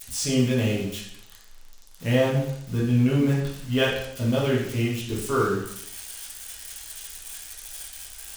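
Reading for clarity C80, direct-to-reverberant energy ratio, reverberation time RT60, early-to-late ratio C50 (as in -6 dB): 6.5 dB, -6.5 dB, 0.75 s, 2.0 dB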